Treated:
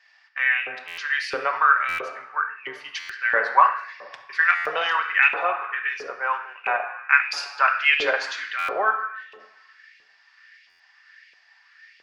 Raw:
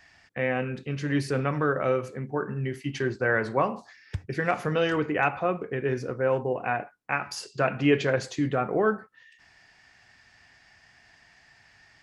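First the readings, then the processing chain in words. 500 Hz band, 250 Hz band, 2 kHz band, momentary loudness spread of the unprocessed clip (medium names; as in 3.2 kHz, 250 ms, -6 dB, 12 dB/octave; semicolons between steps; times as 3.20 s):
-5.5 dB, under -20 dB, +10.5 dB, 8 LU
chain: high-order bell 2.3 kHz +14.5 dB 2.9 oct; simulated room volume 2500 m³, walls mixed, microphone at 1.2 m; LFO high-pass saw up 1.5 Hz 440–2600 Hz; dynamic bell 620 Hz, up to +5 dB, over -28 dBFS, Q 1.2; in parallel at -0.5 dB: compression, threshold -19 dBFS, peak gain reduction 16.5 dB; on the sum: buffer glitch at 0.87/1.88/2.99/4.55/8.58/10.69 s, samples 512, times 8; three bands expanded up and down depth 40%; trim -12.5 dB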